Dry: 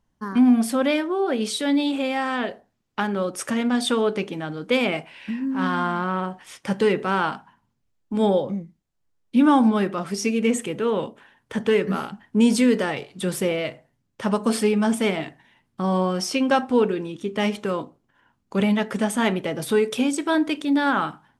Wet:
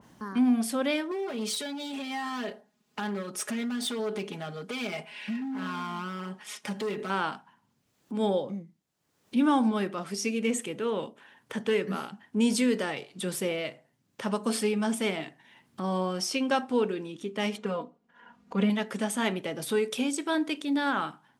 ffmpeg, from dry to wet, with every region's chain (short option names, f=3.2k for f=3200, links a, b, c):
-filter_complex "[0:a]asettb=1/sr,asplit=3[a][b][c];[a]atrim=end=1.114[d];[b]atrim=start=1.11:end=7.1,asetpts=PTS-STARTPTS,afade=t=in:d=0.004:c=qsin,afade=t=out:st=5.986:d=0.004:c=qsin,acompressor=threshold=-24dB:ratio=5:attack=3.2:release=140:knee=1:detection=peak,asoftclip=type=hard:threshold=-25.5dB,aecho=1:1:4.8:0.9,atrim=end_sample=264159[e];[c]atrim=start=7.096[f];[d][e]acrossfade=d=0.004:c1=hsin:c2=qsin[g];[g][f]acrossfade=d=0.004:c1=qsin:c2=hsin,asettb=1/sr,asplit=3[h][i][j];[h]atrim=end=17.584[k];[i]atrim=start=17.58:end=18.7,asetpts=PTS-STARTPTS,afade=t=in:d=0.004:c=qsin,afade=t=out:st=1.116:d=0.004:c=qsin,aemphasis=mode=reproduction:type=75kf,bandreject=f=280:w=5.5,aecho=1:1:4.2:0.95,atrim=end_sample=49392[l];[j]atrim=start=18.696[m];[k][l]acrossfade=d=0.004:c1=hsin:c2=qsin[n];[n][m]acrossfade=d=0.004:c1=qsin:c2=hsin,highpass=140,acompressor=mode=upward:threshold=-28dB:ratio=2.5,adynamicequalizer=threshold=0.0158:dfrequency=2300:dqfactor=0.7:tfrequency=2300:tqfactor=0.7:attack=5:release=100:ratio=0.375:range=2:mode=boostabove:tftype=highshelf,volume=-7dB"